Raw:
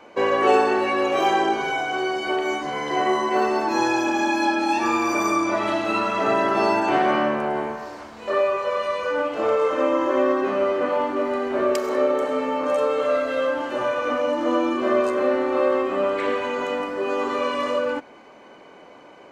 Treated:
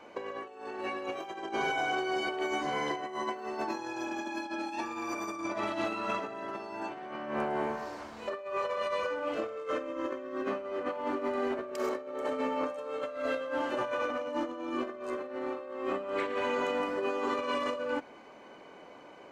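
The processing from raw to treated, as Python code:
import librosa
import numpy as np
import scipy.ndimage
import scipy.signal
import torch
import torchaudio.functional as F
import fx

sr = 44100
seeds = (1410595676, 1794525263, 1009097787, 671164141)

y = fx.peak_eq(x, sr, hz=870.0, db=-12.0, octaves=0.34, at=(9.33, 10.51))
y = fx.over_compress(y, sr, threshold_db=-25.0, ratio=-0.5)
y = y * librosa.db_to_amplitude(-8.5)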